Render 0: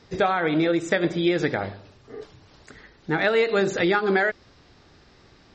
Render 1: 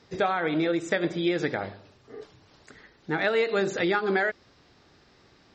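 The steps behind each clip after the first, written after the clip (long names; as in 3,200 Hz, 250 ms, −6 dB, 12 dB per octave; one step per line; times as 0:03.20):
low-shelf EQ 71 Hz −10 dB
level −3.5 dB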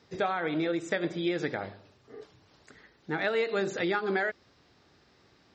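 high-pass filter 46 Hz
level −4 dB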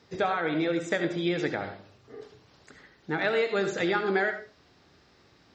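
convolution reverb RT60 0.35 s, pre-delay 64 ms, DRR 8 dB
level +2 dB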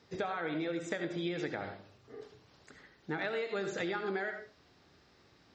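downward compressor, threshold −28 dBFS, peak gain reduction 7 dB
level −4 dB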